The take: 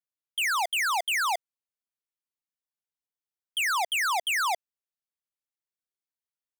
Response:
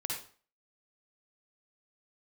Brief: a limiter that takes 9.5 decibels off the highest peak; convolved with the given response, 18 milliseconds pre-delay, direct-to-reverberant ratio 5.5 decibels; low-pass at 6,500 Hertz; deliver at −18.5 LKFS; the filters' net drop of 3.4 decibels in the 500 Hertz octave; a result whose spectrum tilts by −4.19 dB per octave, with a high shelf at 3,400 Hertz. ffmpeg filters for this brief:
-filter_complex "[0:a]lowpass=6500,equalizer=frequency=500:width_type=o:gain=-5.5,highshelf=frequency=3400:gain=-8,alimiter=level_in=11.5dB:limit=-24dB:level=0:latency=1,volume=-11.5dB,asplit=2[link_01][link_02];[1:a]atrim=start_sample=2205,adelay=18[link_03];[link_02][link_03]afir=irnorm=-1:irlink=0,volume=-8dB[link_04];[link_01][link_04]amix=inputs=2:normalize=0,volume=18.5dB"

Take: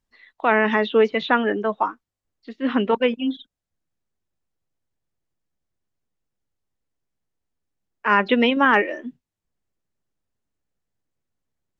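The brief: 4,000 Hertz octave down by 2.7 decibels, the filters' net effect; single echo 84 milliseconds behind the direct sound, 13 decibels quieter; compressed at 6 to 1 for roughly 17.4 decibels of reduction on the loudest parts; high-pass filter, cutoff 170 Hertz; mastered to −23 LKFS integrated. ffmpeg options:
ffmpeg -i in.wav -af "highpass=170,equalizer=frequency=4000:width_type=o:gain=-4,acompressor=threshold=-32dB:ratio=6,aecho=1:1:84:0.224,volume=13dB" out.wav

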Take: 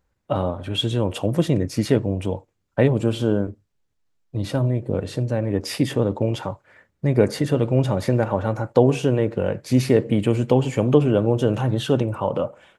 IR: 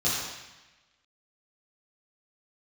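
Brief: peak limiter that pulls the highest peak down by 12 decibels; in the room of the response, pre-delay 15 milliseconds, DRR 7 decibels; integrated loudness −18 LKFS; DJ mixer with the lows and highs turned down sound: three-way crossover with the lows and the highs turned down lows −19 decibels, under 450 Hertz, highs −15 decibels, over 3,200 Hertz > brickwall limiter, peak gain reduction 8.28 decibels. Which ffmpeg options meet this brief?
-filter_complex "[0:a]alimiter=limit=-13.5dB:level=0:latency=1,asplit=2[link_01][link_02];[1:a]atrim=start_sample=2205,adelay=15[link_03];[link_02][link_03]afir=irnorm=-1:irlink=0,volume=-18.5dB[link_04];[link_01][link_04]amix=inputs=2:normalize=0,acrossover=split=450 3200:gain=0.112 1 0.178[link_05][link_06][link_07];[link_05][link_06][link_07]amix=inputs=3:normalize=0,volume=16dB,alimiter=limit=-7dB:level=0:latency=1"

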